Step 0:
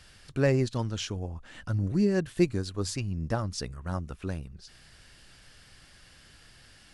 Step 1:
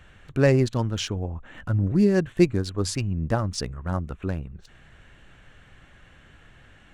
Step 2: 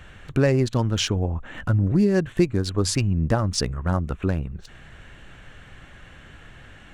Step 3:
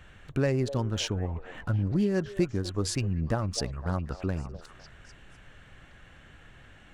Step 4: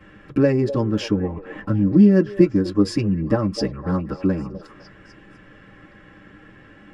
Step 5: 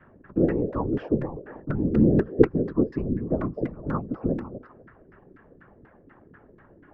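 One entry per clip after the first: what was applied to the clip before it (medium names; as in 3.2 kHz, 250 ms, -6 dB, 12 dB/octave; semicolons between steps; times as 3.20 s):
local Wiener filter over 9 samples; trim +5.5 dB
compression 3:1, threshold -24 dBFS, peak gain reduction 9.5 dB; trim +6.5 dB
repeats whose band climbs or falls 252 ms, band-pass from 580 Hz, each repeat 0.7 oct, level -9 dB; trim -7 dB
reverberation, pre-delay 3 ms, DRR -6.5 dB; trim -1 dB
LFO low-pass saw down 4.1 Hz 270–1700 Hz; whisper effect; trim -7.5 dB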